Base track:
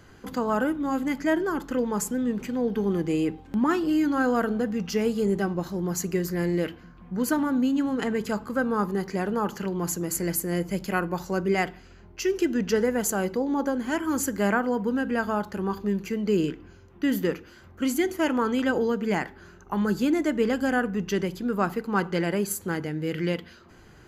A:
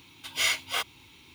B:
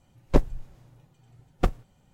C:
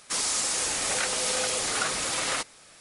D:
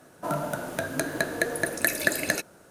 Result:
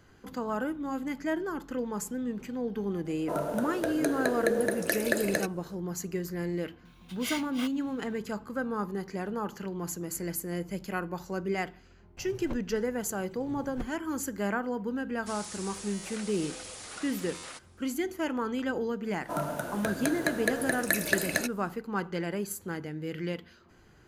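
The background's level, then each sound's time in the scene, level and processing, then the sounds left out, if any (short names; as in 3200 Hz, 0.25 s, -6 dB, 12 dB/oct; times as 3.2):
base track -7 dB
3.05 add D -6.5 dB + bell 450 Hz +13 dB
6.85 add A -10.5 dB
12.17 add B -15.5 dB + three-band squash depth 100%
15.16 add C -15.5 dB + stuck buffer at 0.77/2.17
19.06 add D -3 dB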